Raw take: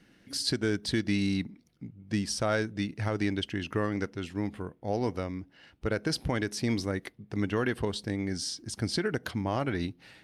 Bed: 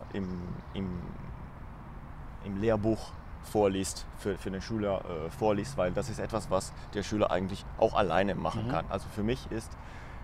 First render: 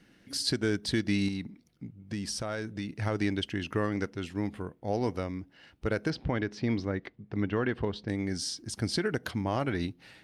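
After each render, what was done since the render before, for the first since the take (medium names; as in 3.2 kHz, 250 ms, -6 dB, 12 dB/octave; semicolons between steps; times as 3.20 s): 1.28–3.02 s: compression, threshold -30 dBFS; 6.10–8.09 s: distance through air 210 m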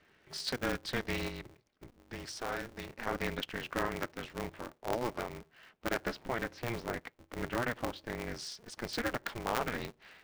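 band-pass filter 1.2 kHz, Q 0.54; polarity switched at an audio rate 120 Hz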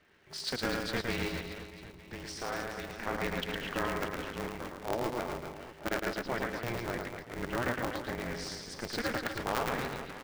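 reverse bouncing-ball echo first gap 110 ms, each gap 1.25×, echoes 5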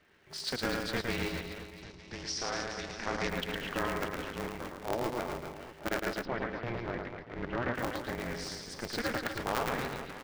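1.82–3.29 s: resonant low-pass 5.6 kHz, resonance Q 2.8; 6.25–7.75 s: distance through air 230 m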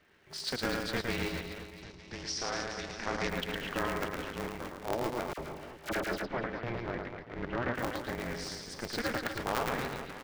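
5.33–6.44 s: phase dispersion lows, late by 50 ms, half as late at 1.4 kHz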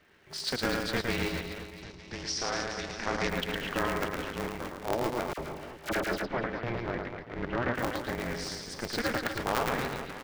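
trim +3 dB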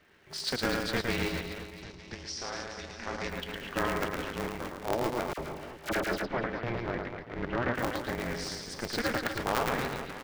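2.14–3.77 s: feedback comb 78 Hz, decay 0.19 s, harmonics odd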